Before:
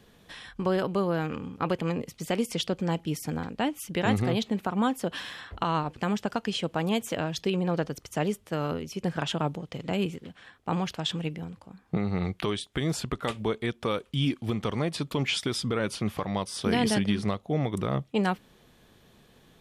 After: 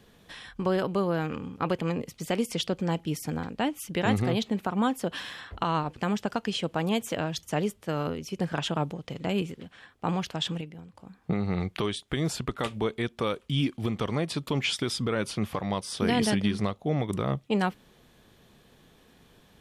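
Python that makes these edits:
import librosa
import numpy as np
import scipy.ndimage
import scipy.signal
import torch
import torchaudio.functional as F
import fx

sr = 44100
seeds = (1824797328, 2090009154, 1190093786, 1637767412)

y = fx.edit(x, sr, fx.cut(start_s=7.43, length_s=0.64),
    fx.clip_gain(start_s=11.25, length_s=0.34, db=-7.5), tone=tone)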